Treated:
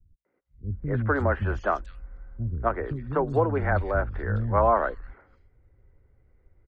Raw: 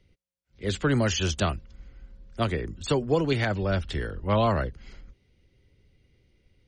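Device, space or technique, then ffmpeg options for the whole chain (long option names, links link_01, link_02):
low shelf boost with a cut just above: -filter_complex "[0:a]firequalizer=gain_entry='entry(370,0);entry(800,6);entry(1500,5);entry(2900,-20);entry(6100,-29)':delay=0.05:min_phase=1,lowshelf=frequency=67:gain=7.5,equalizer=frequency=170:width_type=o:width=0.61:gain=-5.5,acrossover=split=240|3100[link_01][link_02][link_03];[link_02]adelay=250[link_04];[link_03]adelay=460[link_05];[link_01][link_04][link_05]amix=inputs=3:normalize=0"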